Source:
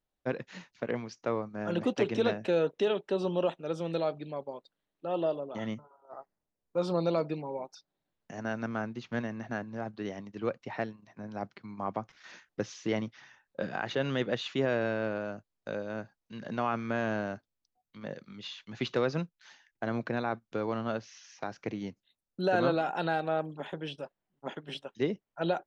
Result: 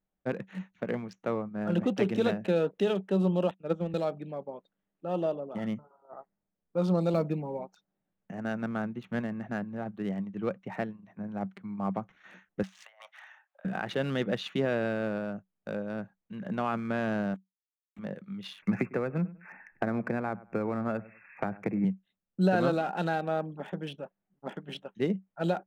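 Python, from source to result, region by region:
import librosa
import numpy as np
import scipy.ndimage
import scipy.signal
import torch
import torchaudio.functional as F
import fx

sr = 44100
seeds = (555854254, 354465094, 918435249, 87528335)

y = fx.chain(x, sr, fx.high_shelf(hz=5800.0, db=-9.5),
    fx.transient(attack_db=4, sustain_db=-8),
    fx.band_widen(depth_pct=100), at=(3.51, 3.94))
y = fx.chain(y, sr, fx.block_float(bits=7),
    fx.low_shelf(hz=180.0, db=8.0), at=(7.14, 7.61))
y = fx.chain(y, sr, fx.steep_highpass(hz=610.0, slope=72),
    fx.over_compress(threshold_db=-52.0, ratio=-1.0), at=(12.63, 13.65))
y = fx.chain(y, sr, fx.vowel_filter(vowel='i'),
    fx.quant_companded(bits=4), at=(17.34, 17.99))
y = fx.chain(y, sr, fx.brickwall_lowpass(high_hz=2700.0),
    fx.echo_feedback(ms=99, feedback_pct=19, wet_db=-21.0),
    fx.band_squash(depth_pct=100), at=(18.62, 21.85))
y = fx.wiener(y, sr, points=9)
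y = fx.peak_eq(y, sr, hz=190.0, db=14.0, octaves=0.23)
y = fx.notch(y, sr, hz=1000.0, q=16.0)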